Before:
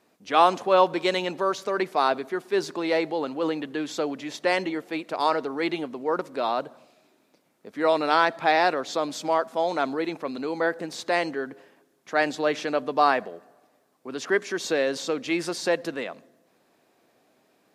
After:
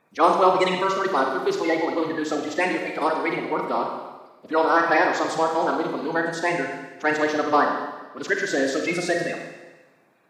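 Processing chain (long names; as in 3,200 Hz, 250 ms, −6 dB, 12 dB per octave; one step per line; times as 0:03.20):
spectral magnitudes quantised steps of 30 dB
phase-vocoder stretch with locked phases 0.58×
four-comb reverb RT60 1.2 s, combs from 33 ms, DRR 2 dB
level +2 dB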